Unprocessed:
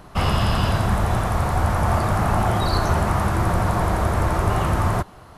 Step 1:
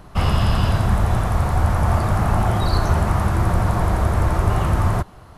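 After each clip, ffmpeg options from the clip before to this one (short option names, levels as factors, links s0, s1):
-af "lowshelf=f=140:g=6.5,volume=0.841"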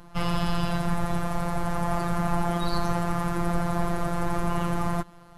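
-af "afftfilt=real='hypot(re,im)*cos(PI*b)':imag='0':win_size=1024:overlap=0.75,volume=0.794"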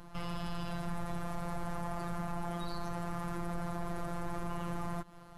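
-af "alimiter=limit=0.0891:level=0:latency=1:release=173,volume=0.708"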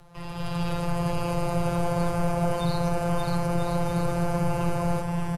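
-filter_complex "[0:a]dynaudnorm=f=170:g=5:m=3.35,afreqshift=-170,asplit=2[s0][s1];[s1]aecho=0:1:580|986|1270|1469|1608:0.631|0.398|0.251|0.158|0.1[s2];[s0][s2]amix=inputs=2:normalize=0"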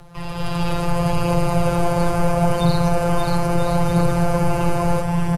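-af "aphaser=in_gain=1:out_gain=1:delay=3.6:decay=0.23:speed=0.75:type=triangular,volume=2.24"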